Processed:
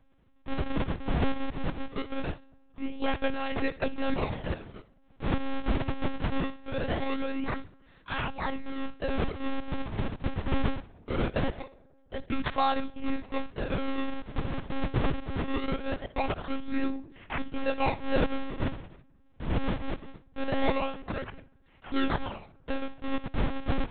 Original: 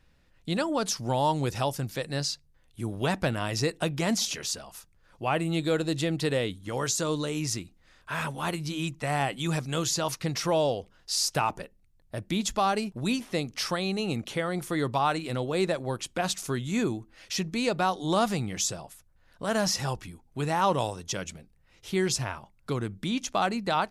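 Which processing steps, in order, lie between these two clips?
9.34–10.12 delta modulation 16 kbps, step -31.5 dBFS; 15.5–15.96 negative-ratio compressor -27 dBFS, ratio -0.5; decimation with a swept rate 41×, swing 160% 0.22 Hz; thinning echo 65 ms, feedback 28%, high-pass 650 Hz, level -15.5 dB; on a send at -22.5 dB: reverb RT60 1.5 s, pre-delay 3 ms; on the sum: monotone LPC vocoder at 8 kHz 270 Hz

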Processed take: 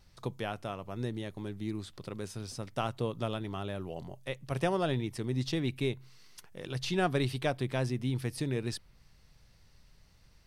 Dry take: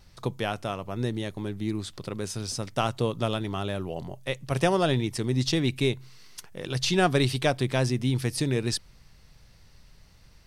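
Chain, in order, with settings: dynamic EQ 6500 Hz, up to -6 dB, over -47 dBFS, Q 0.76; gain -6.5 dB

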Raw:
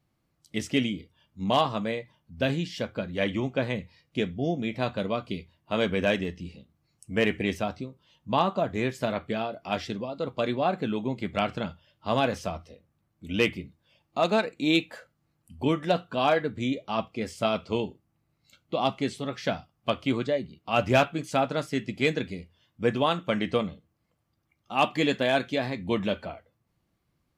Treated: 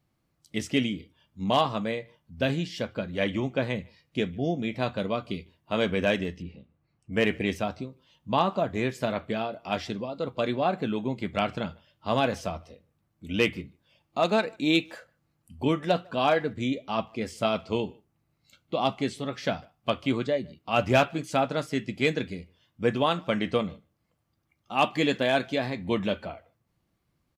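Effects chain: 6.42–7.13 LPF 2400 Hz 12 dB/oct; speakerphone echo 0.15 s, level -27 dB

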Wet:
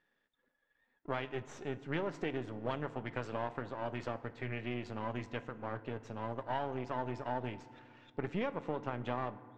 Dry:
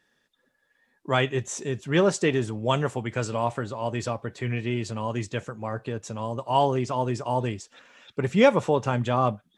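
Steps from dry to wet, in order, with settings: half-wave gain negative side -12 dB; LPF 2800 Hz 12 dB/oct; low shelf 120 Hz -8.5 dB; compressor 10:1, threshold -27 dBFS, peak gain reduction 14 dB; FDN reverb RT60 2.1 s, low-frequency decay 1.5×, high-frequency decay 0.45×, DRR 14.5 dB; gain -4.5 dB

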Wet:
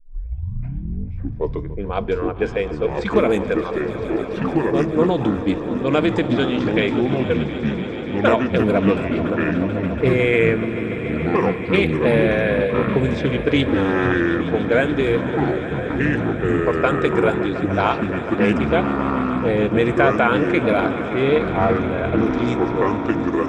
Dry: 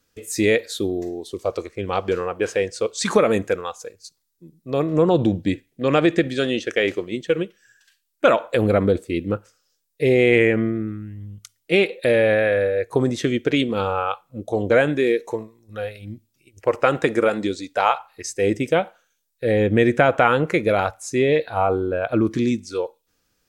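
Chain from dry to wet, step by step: tape start at the beginning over 1.82 s; notches 50/100/150 Hz; low-pass opened by the level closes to 470 Hz, open at -14 dBFS; in parallel at -3 dB: level quantiser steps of 10 dB; on the sum: ripple EQ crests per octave 1.7, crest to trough 6 dB; on a send: swelling echo 0.144 s, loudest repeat 5, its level -16 dB; on the sum: echoes that change speed 0.339 s, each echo -5 st, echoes 3; Doppler distortion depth 0.12 ms; gain -4.5 dB

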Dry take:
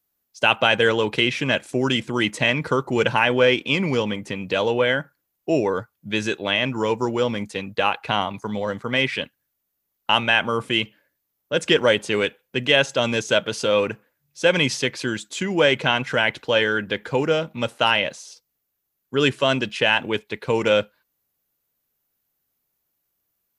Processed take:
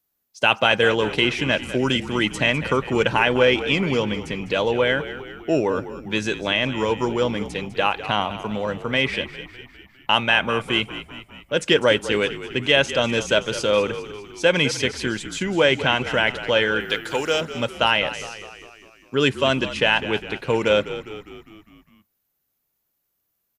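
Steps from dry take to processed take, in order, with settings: 16.8–17.41 RIAA curve recording; frequency-shifting echo 0.202 s, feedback 56%, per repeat -50 Hz, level -13 dB

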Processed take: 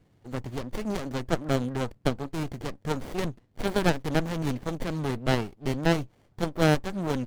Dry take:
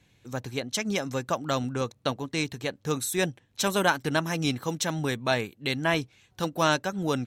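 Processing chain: formant shift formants +2 st; added harmonics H 8 -24 dB, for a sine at -8.5 dBFS; running maximum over 33 samples; gain +2 dB

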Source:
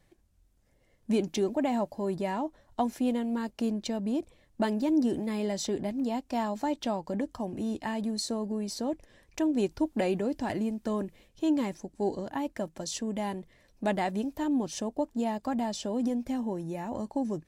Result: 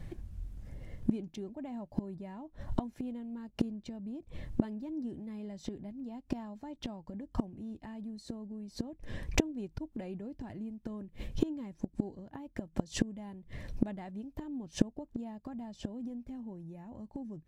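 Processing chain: tone controls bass +13 dB, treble -6 dB; flipped gate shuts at -25 dBFS, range -30 dB; gain +12 dB

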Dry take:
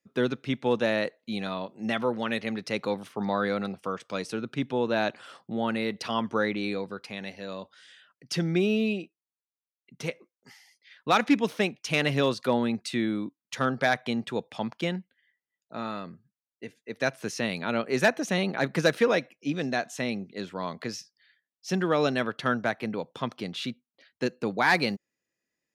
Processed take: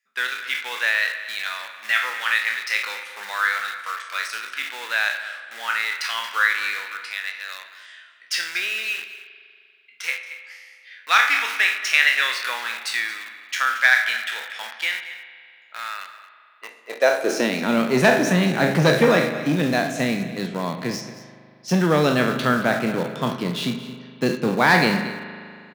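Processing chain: spectral trails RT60 0.47 s; de-hum 69.68 Hz, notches 3; in parallel at -8.5 dB: bit-crush 5-bit; on the sum: high-pass sweep 1700 Hz -> 150 Hz, 16.31–17.87; on a send: echo 0.227 s -15.5 dB; on the sum: spring tank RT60 2.4 s, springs 39 ms, chirp 40 ms, DRR 10.5 dB; core saturation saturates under 630 Hz; gain +2 dB

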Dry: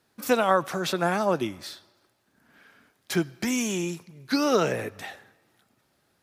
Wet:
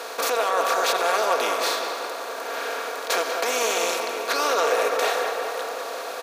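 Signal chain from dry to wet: per-bin compression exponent 0.4; comb 4.3 ms, depth 52%; limiter -13.5 dBFS, peak gain reduction 10 dB; HPF 470 Hz 24 dB/oct; on a send: tape echo 0.197 s, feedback 77%, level -5 dB, low-pass 2100 Hz; on the sum: gain +2 dB

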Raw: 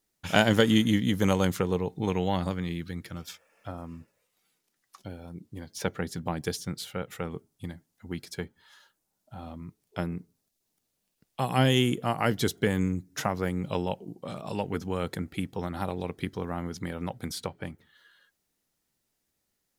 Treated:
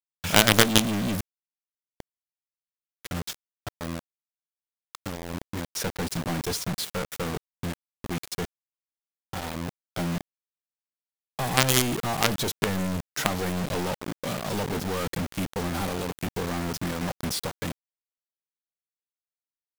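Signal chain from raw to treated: 1.15–3.81 flipped gate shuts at -24 dBFS, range -37 dB; companded quantiser 2-bit; gain -1 dB

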